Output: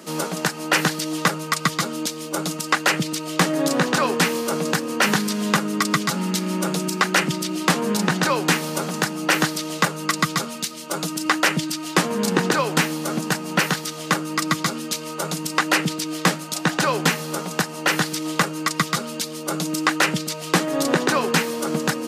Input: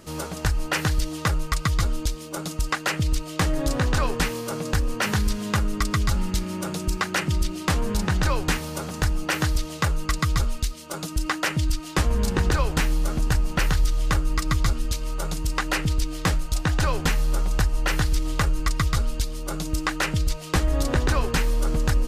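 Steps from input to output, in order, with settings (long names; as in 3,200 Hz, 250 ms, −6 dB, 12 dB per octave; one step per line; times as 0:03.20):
Butterworth high-pass 160 Hz 48 dB per octave
level +6.5 dB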